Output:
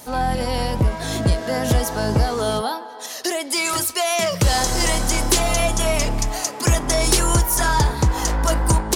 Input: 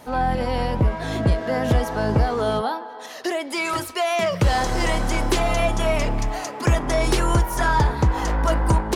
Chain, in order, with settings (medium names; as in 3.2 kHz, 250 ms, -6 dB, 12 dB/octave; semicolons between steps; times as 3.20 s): tone controls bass +1 dB, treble +14 dB